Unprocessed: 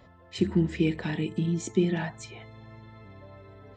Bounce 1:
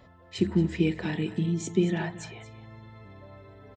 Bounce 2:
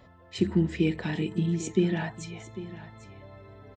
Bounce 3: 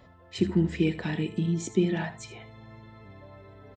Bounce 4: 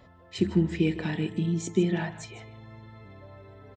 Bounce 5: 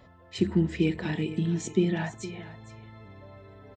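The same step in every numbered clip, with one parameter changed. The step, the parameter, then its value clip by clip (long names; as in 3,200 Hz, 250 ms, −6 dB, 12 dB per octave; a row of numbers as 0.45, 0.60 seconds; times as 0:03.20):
single-tap delay, delay time: 228, 798, 78, 155, 463 milliseconds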